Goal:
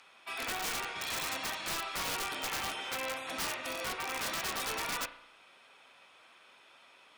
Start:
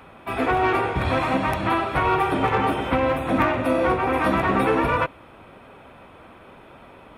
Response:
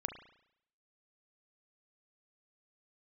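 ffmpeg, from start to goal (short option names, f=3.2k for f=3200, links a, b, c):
-filter_complex "[0:a]bandpass=f=5.7k:t=q:w=1.8:csg=0,aeval=exprs='(mod(53.1*val(0)+1,2)-1)/53.1':c=same,asplit=2[a][b];[1:a]atrim=start_sample=2205[c];[b][c]afir=irnorm=-1:irlink=0,volume=0.5dB[d];[a][d]amix=inputs=2:normalize=0"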